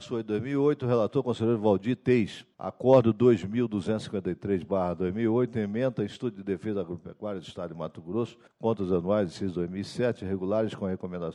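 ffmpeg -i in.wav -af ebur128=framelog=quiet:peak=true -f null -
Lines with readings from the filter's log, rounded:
Integrated loudness:
  I:         -28.1 LUFS
  Threshold: -38.3 LUFS
Loudness range:
  LRA:         7.2 LU
  Threshold: -48.2 LUFS
  LRA low:   -32.5 LUFS
  LRA high:  -25.3 LUFS
True peak:
  Peak:       -8.3 dBFS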